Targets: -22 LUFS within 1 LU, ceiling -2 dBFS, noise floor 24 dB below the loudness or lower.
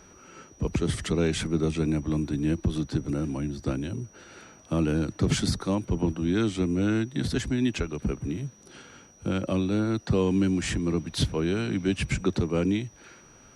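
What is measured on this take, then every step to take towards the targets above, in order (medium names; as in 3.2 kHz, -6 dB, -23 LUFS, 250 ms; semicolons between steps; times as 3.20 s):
steady tone 5.8 kHz; tone level -55 dBFS; loudness -27.5 LUFS; peak level -11.5 dBFS; loudness target -22.0 LUFS
-> band-stop 5.8 kHz, Q 30; trim +5.5 dB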